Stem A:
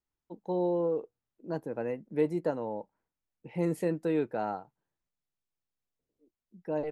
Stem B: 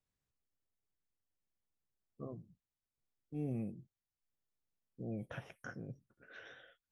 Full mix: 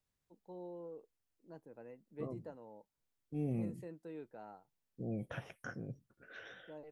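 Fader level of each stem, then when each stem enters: -19.0 dB, +2.0 dB; 0.00 s, 0.00 s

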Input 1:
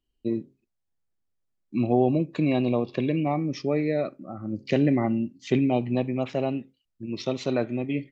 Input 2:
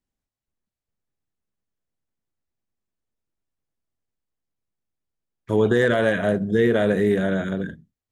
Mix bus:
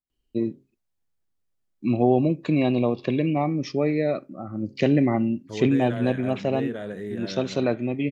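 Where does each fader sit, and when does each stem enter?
+2.0 dB, -14.0 dB; 0.10 s, 0.00 s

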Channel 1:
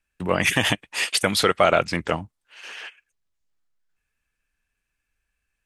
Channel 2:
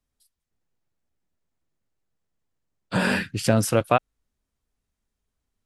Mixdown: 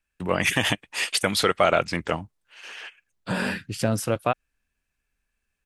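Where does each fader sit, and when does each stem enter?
-2.0 dB, -4.0 dB; 0.00 s, 0.35 s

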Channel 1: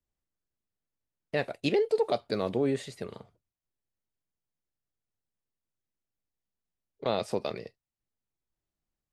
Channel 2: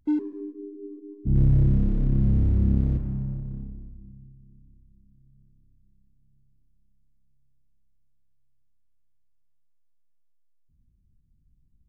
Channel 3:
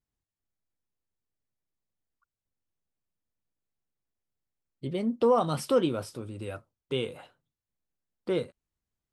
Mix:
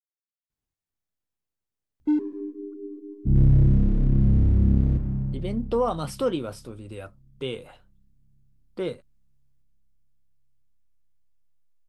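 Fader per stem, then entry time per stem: mute, +2.0 dB, -1.0 dB; mute, 2.00 s, 0.50 s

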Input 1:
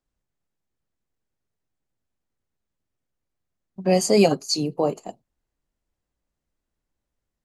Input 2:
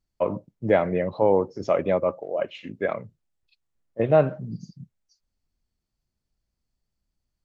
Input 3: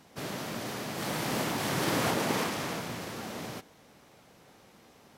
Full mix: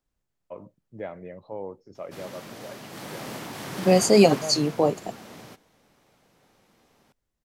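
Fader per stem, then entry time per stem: +1.0 dB, -16.0 dB, -5.5 dB; 0.00 s, 0.30 s, 1.95 s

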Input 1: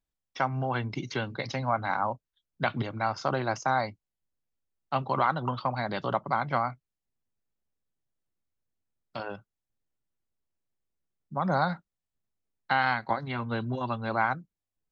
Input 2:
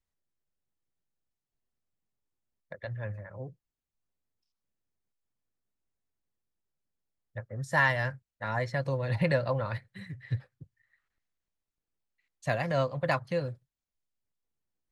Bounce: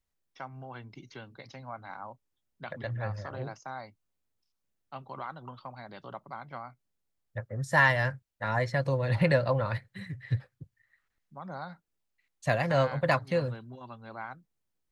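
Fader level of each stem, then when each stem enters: -14.0 dB, +2.5 dB; 0.00 s, 0.00 s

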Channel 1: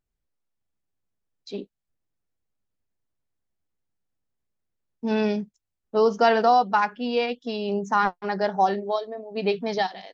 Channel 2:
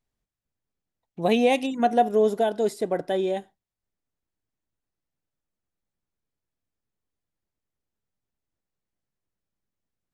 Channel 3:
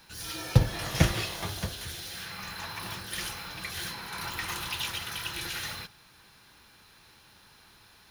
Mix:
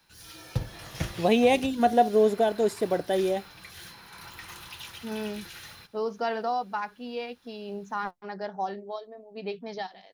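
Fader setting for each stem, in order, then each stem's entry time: -10.5 dB, -0.5 dB, -9.0 dB; 0.00 s, 0.00 s, 0.00 s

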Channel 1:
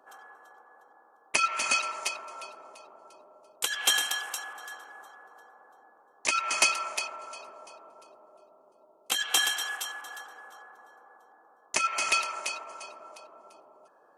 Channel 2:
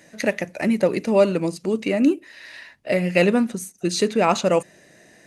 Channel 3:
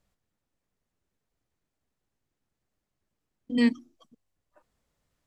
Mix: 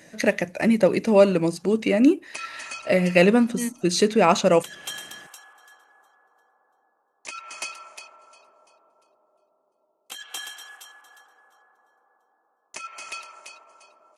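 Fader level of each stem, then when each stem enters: -10.0 dB, +1.0 dB, -7.0 dB; 1.00 s, 0.00 s, 0.00 s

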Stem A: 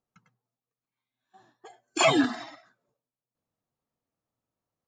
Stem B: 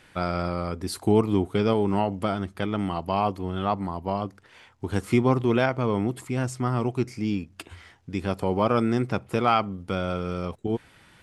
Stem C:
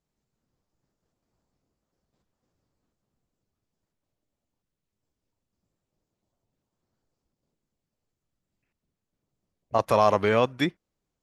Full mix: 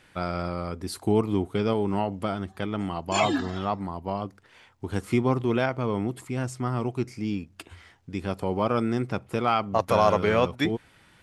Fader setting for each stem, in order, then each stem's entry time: -4.0 dB, -2.5 dB, -0.5 dB; 1.15 s, 0.00 s, 0.00 s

